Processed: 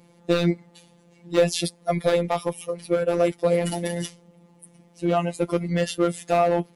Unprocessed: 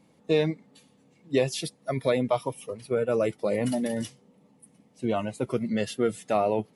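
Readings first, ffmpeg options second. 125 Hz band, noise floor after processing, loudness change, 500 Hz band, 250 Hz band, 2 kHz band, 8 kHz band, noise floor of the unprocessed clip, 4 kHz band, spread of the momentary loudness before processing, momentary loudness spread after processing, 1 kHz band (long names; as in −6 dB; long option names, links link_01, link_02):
+5.5 dB, −57 dBFS, +3.5 dB, +4.0 dB, +3.0 dB, +4.0 dB, +6.0 dB, −62 dBFS, +5.0 dB, 8 LU, 8 LU, +5.5 dB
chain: -af "volume=19dB,asoftclip=hard,volume=-19dB,afftfilt=real='hypot(re,im)*cos(PI*b)':imag='0':win_size=1024:overlap=0.75,volume=9dB"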